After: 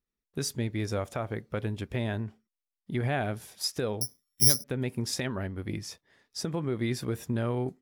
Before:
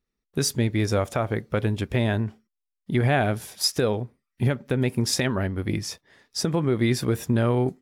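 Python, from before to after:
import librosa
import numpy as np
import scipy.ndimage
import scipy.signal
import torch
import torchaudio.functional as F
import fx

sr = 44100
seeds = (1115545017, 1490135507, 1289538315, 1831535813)

y = fx.resample_bad(x, sr, factor=8, down='filtered', up='zero_stuff', at=(4.01, 4.64))
y = F.gain(torch.from_numpy(y), -8.0).numpy()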